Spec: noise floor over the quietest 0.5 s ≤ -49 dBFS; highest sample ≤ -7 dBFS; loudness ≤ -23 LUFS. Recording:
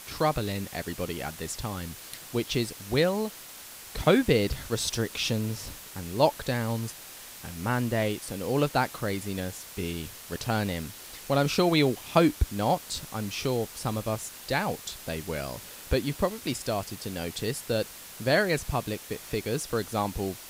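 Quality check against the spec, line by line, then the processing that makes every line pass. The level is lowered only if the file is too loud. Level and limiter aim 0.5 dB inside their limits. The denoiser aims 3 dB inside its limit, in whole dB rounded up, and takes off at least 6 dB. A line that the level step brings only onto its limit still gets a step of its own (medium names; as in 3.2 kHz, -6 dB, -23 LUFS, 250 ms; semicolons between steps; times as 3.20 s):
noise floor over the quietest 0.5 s -45 dBFS: fail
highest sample -7.5 dBFS: pass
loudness -29.0 LUFS: pass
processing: noise reduction 7 dB, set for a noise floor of -45 dBFS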